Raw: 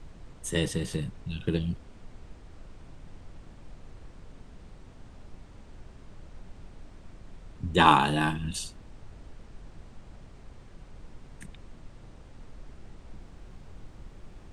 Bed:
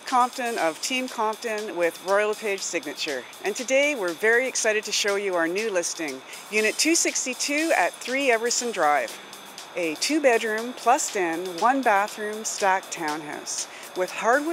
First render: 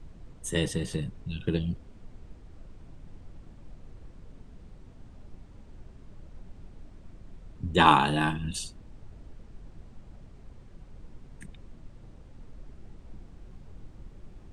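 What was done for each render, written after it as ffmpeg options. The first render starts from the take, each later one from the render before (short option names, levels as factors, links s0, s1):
-af "afftdn=nr=6:nf=-51"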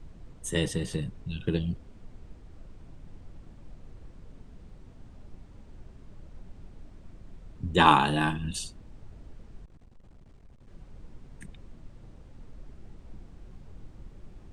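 -filter_complex "[0:a]asettb=1/sr,asplit=3[s0][s1][s2];[s0]atrim=end=9.654[s3];[s1]atrim=start=9.65:end=10.68,asetpts=PTS-STARTPTS,afade=t=in:d=0.004:c=qsin,afade=t=out:st=1.026:d=0.004:c=qsin,aeval=exprs='(tanh(282*val(0)+0.45)-tanh(0.45))/282':c=same[s4];[s2]atrim=start=10.676[s5];[s3][s4]acrossfade=d=0.004:c1=hsin:c2=qsin[s6];[s6][s5]acrossfade=d=0.004:c1=qsin:c2=hsin"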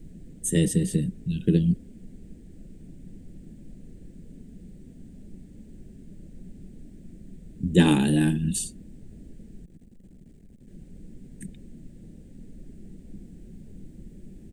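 -af "firequalizer=gain_entry='entry(120,0);entry(180,12);entry(1100,-21);entry(1700,-3);entry(2700,-3);entry(5500,-1);entry(7800,9);entry(13000,13)':delay=0.05:min_phase=1"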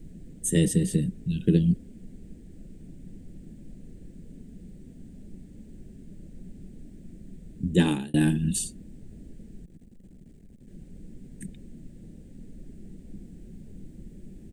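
-filter_complex "[0:a]asplit=2[s0][s1];[s0]atrim=end=8.14,asetpts=PTS-STARTPTS,afade=t=out:st=7.44:d=0.7:c=qsin[s2];[s1]atrim=start=8.14,asetpts=PTS-STARTPTS,afade=t=in:d=0.004:c=hsin[s3];[s2][s3]concat=n=2:v=0:a=1"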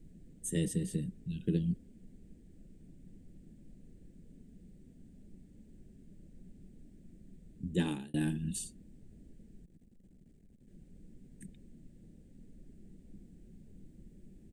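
-af "volume=0.299"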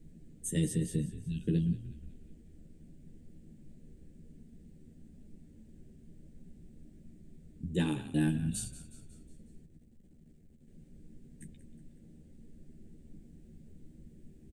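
-filter_complex "[0:a]asplit=2[s0][s1];[s1]adelay=13,volume=0.562[s2];[s0][s2]amix=inputs=2:normalize=0,asplit=6[s3][s4][s5][s6][s7][s8];[s4]adelay=183,afreqshift=-48,volume=0.178[s9];[s5]adelay=366,afreqshift=-96,volume=0.0923[s10];[s6]adelay=549,afreqshift=-144,volume=0.0479[s11];[s7]adelay=732,afreqshift=-192,volume=0.0251[s12];[s8]adelay=915,afreqshift=-240,volume=0.013[s13];[s3][s9][s10][s11][s12][s13]amix=inputs=6:normalize=0"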